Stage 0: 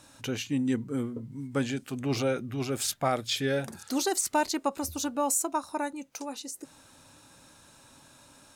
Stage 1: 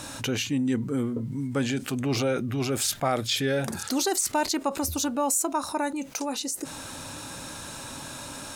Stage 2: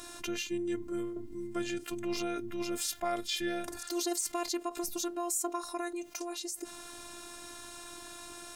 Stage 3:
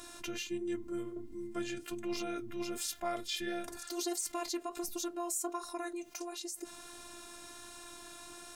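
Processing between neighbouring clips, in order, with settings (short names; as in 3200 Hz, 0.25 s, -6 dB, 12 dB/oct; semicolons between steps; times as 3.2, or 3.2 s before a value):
fast leveller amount 50%
robotiser 346 Hz; gain -5.5 dB
flange 1.4 Hz, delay 2.7 ms, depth 4.9 ms, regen -63%; gain +1 dB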